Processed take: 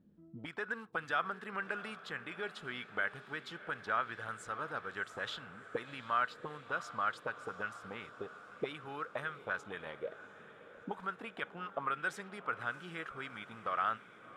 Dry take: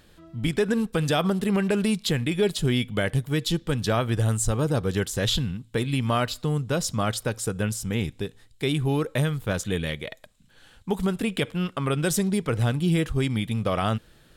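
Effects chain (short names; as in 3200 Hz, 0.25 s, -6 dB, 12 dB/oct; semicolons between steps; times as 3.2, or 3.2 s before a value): auto-wah 200–1400 Hz, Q 3.5, up, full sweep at -21.5 dBFS; diffused feedback echo 0.705 s, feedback 65%, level -15 dB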